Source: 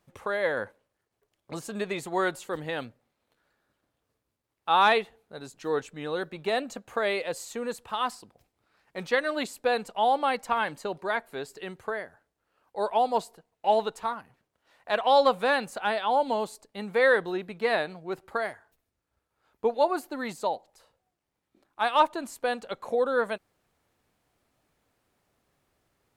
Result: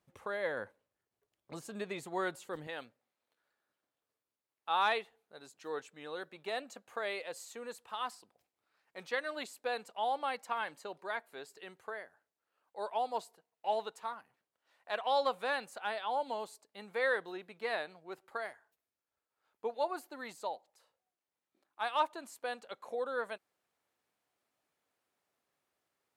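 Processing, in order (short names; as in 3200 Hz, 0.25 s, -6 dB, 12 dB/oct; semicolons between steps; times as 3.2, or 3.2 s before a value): HPF 57 Hz 6 dB/oct, from 2.67 s 490 Hz; gain -8.5 dB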